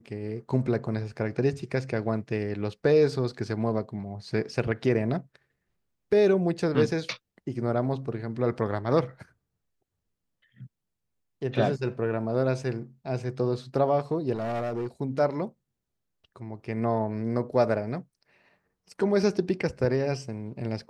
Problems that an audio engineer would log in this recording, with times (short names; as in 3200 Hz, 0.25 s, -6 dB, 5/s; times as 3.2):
14.33–14.87 clipped -27 dBFS